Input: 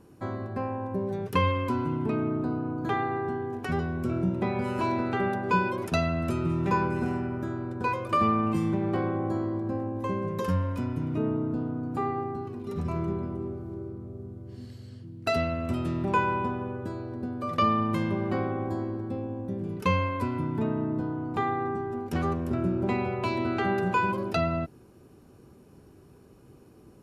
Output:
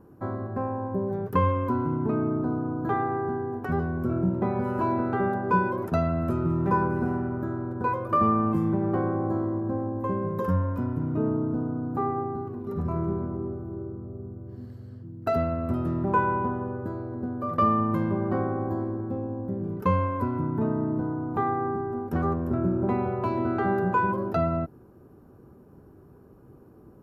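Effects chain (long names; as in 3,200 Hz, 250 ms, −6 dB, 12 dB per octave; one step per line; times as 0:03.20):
flat-topped bell 4,700 Hz −15.5 dB 2.6 octaves
level +2 dB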